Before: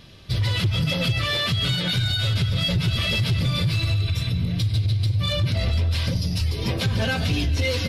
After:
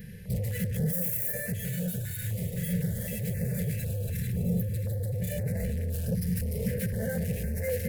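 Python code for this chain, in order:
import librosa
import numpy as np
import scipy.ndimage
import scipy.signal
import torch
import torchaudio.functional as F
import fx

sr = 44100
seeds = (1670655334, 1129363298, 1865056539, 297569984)

p1 = 10.0 ** (-30.5 / 20.0) * np.tanh(x / 10.0 ** (-30.5 / 20.0))
p2 = fx.doubler(p1, sr, ms=45.0, db=-3.0, at=(2.14, 3.09))
p3 = fx.brickwall_bandstop(p2, sr, low_hz=1800.0, high_hz=11000.0, at=(4.33, 4.74))
p4 = p3 + fx.echo_wet_highpass(p3, sr, ms=332, feedback_pct=68, hz=1900.0, wet_db=-10.0, dry=0)
p5 = fx.overflow_wrap(p4, sr, gain_db=34.0, at=(0.91, 1.32), fade=0.02)
p6 = fx.rider(p5, sr, range_db=3, speed_s=0.5)
p7 = fx.curve_eq(p6, sr, hz=(110.0, 210.0, 300.0, 480.0, 1200.0, 1700.0, 3500.0, 5400.0, 13000.0), db=(0, 10, -23, 11, -28, 5, -19, -12, 12))
y = fx.filter_held_notch(p7, sr, hz=3.9, low_hz=620.0, high_hz=3200.0)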